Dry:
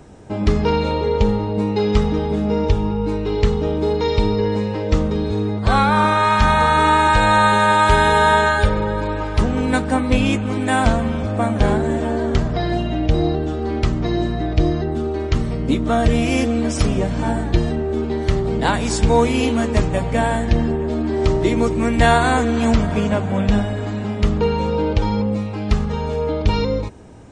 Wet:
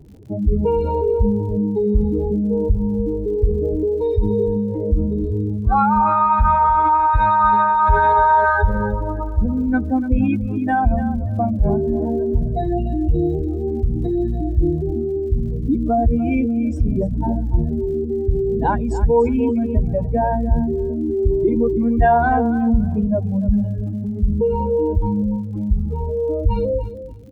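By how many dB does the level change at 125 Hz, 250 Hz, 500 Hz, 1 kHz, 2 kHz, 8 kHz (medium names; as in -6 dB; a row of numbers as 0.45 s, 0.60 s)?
-1.5 dB, 0.0 dB, -0.5 dB, +1.0 dB, -6.5 dB, under -20 dB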